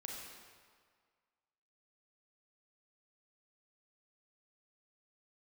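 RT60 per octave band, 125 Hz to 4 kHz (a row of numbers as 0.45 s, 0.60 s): 1.6 s, 1.6 s, 1.8 s, 1.9 s, 1.6 s, 1.4 s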